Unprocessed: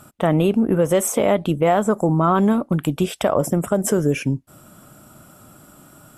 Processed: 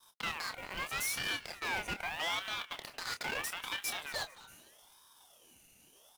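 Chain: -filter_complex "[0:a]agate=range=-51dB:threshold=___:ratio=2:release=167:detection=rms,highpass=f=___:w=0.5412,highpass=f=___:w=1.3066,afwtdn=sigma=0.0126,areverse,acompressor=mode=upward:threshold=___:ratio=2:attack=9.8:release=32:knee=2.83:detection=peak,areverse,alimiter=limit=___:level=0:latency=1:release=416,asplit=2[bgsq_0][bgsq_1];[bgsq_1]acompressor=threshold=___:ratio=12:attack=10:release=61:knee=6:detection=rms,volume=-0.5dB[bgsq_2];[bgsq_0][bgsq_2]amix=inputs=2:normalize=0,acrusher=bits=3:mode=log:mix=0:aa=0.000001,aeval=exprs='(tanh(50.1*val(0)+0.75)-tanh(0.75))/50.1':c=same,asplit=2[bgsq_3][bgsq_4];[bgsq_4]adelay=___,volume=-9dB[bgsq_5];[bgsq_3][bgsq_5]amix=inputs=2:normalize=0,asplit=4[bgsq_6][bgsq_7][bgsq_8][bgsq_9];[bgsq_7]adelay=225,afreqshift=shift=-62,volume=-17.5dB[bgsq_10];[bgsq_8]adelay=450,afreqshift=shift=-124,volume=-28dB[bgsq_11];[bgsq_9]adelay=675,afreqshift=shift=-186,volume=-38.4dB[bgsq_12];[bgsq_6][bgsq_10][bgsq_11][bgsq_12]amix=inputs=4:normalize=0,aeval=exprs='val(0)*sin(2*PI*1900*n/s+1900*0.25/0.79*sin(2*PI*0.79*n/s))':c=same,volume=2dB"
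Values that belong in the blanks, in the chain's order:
-37dB, 860, 860, -47dB, -14dB, -40dB, 27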